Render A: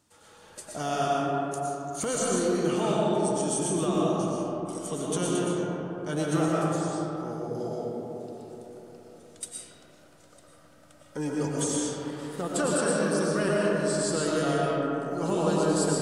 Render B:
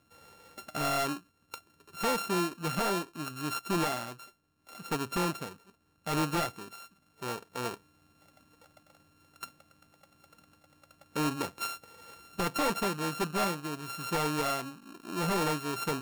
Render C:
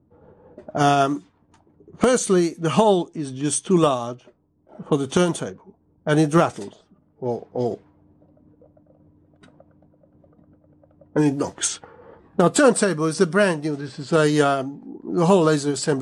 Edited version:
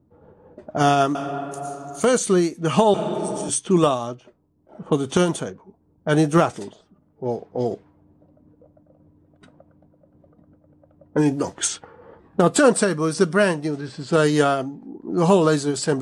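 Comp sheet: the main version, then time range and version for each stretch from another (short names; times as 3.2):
C
1.15–2.04 from A
2.94–3.49 from A
not used: B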